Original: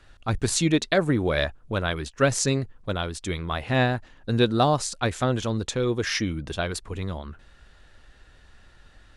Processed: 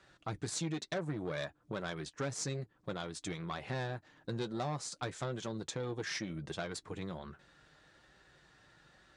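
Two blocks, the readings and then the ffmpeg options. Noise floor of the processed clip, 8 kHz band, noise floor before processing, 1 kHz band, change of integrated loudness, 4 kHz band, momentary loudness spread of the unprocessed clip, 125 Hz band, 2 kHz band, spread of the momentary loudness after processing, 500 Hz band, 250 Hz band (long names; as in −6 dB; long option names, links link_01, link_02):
−71 dBFS, −12.5 dB, −54 dBFS, −14.5 dB, −14.5 dB, −14.0 dB, 10 LU, −14.0 dB, −14.5 dB, 6 LU, −14.5 dB, −15.0 dB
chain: -af "tremolo=f=300:d=0.182,aeval=exprs='(tanh(8.91*val(0)+0.45)-tanh(0.45))/8.91':channel_layout=same,flanger=delay=5.2:depth=1.5:regen=-43:speed=1.1:shape=sinusoidal,highpass=120,equalizer=frequency=150:width_type=q:width=4:gain=3,equalizer=frequency=230:width_type=q:width=4:gain=-4,equalizer=frequency=2800:width_type=q:width=4:gain=-4,lowpass=frequency=9100:width=0.5412,lowpass=frequency=9100:width=1.3066,acompressor=threshold=-40dB:ratio=2.5,volume=1.5dB"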